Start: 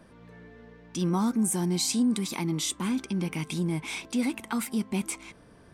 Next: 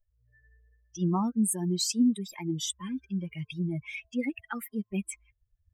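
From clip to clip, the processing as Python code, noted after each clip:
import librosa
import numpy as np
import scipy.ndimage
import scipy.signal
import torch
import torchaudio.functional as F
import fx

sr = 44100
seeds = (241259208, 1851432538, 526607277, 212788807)

y = fx.bin_expand(x, sr, power=3.0)
y = y * librosa.db_to_amplitude(3.0)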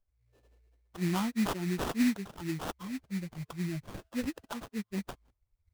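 y = fx.sample_hold(x, sr, seeds[0], rate_hz=2200.0, jitter_pct=20)
y = y * librosa.db_to_amplitude(-3.5)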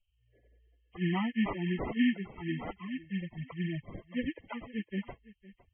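y = fx.freq_compress(x, sr, knee_hz=1700.0, ratio=4.0)
y = y + 10.0 ** (-19.0 / 20.0) * np.pad(y, (int(509 * sr / 1000.0), 0))[:len(y)]
y = fx.spec_topn(y, sr, count=32)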